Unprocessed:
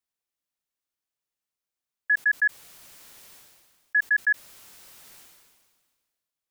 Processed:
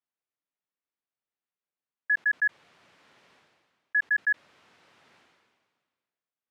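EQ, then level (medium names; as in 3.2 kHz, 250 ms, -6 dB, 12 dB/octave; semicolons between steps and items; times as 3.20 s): band-pass 120–2500 Hz; -2.0 dB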